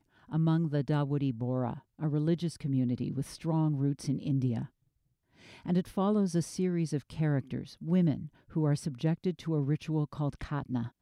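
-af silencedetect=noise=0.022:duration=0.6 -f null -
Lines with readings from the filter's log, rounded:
silence_start: 4.64
silence_end: 5.66 | silence_duration: 1.02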